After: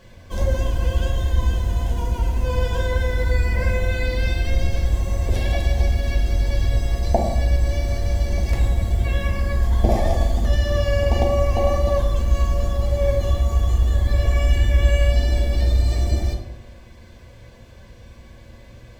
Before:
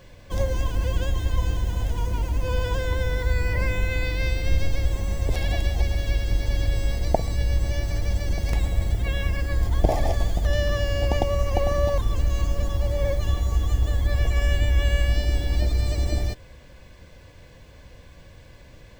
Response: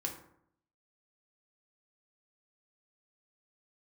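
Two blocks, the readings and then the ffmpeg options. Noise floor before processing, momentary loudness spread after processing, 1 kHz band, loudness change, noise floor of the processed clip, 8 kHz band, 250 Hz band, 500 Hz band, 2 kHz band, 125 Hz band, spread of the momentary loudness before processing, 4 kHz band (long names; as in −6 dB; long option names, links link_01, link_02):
−47 dBFS, 4 LU, +3.5 dB, +4.0 dB, −44 dBFS, +1.5 dB, +4.0 dB, +4.0 dB, +1.5 dB, +4.0 dB, 4 LU, +1.0 dB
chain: -filter_complex "[1:a]atrim=start_sample=2205,asetrate=30429,aresample=44100[link_01];[0:a][link_01]afir=irnorm=-1:irlink=0,volume=-1dB"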